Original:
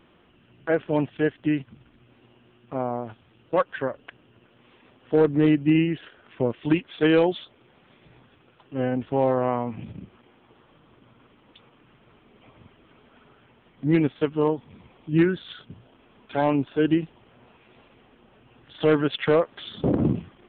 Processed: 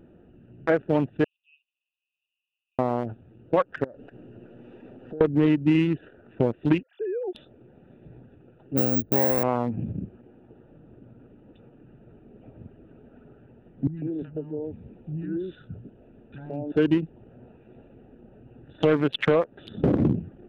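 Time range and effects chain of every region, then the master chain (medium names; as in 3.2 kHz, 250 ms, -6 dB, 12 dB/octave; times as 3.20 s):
1.24–2.79 s: Chebyshev high-pass 2.5 kHz, order 10 + distance through air 430 m
3.84–5.21 s: companding laws mixed up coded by mu + peaking EQ 68 Hz -7 dB 2.5 oct + compression 5:1, threshold -42 dBFS
6.83–7.35 s: formants replaced by sine waves + high-pass 190 Hz 6 dB/octave + compression 8:1, threshold -33 dBFS
8.77–9.43 s: median filter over 41 samples + careless resampling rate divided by 2×, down filtered, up zero stuff
13.87–16.72 s: compression 3:1, threshold -36 dBFS + three bands offset in time lows, highs, mids 30/150 ms, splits 220/970 Hz
whole clip: local Wiener filter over 41 samples; compression 2.5:1, threshold -29 dBFS; trim +8 dB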